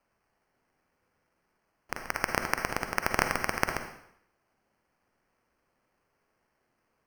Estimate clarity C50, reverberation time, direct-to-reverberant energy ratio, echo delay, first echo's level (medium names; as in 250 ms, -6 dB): 6.5 dB, 0.70 s, 5.5 dB, no echo, no echo